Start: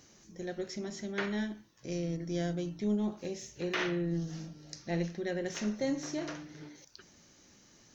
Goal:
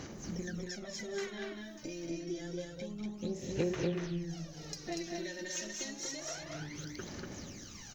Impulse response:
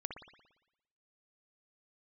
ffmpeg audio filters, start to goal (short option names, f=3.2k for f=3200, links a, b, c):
-filter_complex "[0:a]asettb=1/sr,asplit=3[a][b][c];[a]atrim=end=4.914[d];[b]atrim=start=4.91:end=6.2,asetpts=PTS-STARTPTS,afade=t=in:d=0.004:c=qsin,afade=t=out:st=1.286:d=0.004:c=qsin,highshelf=f=2.9k:g=9.5[e];[c]atrim=start=6.196[f];[d][e]acrossfade=d=0.004:c1=hsin:c2=qsin[g];[g][f]acrossfade=d=0.004:c1=qsin:c2=hsin,acrossover=split=3100[h][i];[h]alimiter=level_in=5dB:limit=-24dB:level=0:latency=1:release=352,volume=-5dB[j];[j][i]amix=inputs=2:normalize=0,acompressor=threshold=-48dB:ratio=6,aphaser=in_gain=1:out_gain=1:delay=3.3:decay=0.76:speed=0.28:type=sinusoidal,asplit=2[k][l];[l]aecho=0:1:192.4|239.1:0.316|0.708[m];[k][m]amix=inputs=2:normalize=0,volume=5.5dB"